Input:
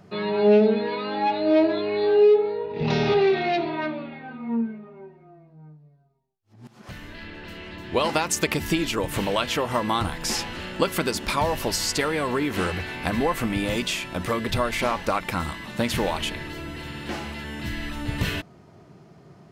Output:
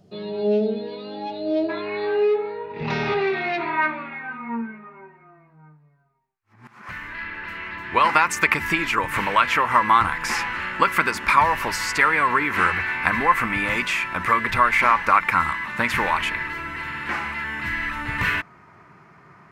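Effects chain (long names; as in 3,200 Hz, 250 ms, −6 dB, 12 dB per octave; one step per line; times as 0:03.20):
flat-topped bell 1,500 Hz −10 dB, from 0:01.68 +8.5 dB, from 0:03.59 +15.5 dB
level −4 dB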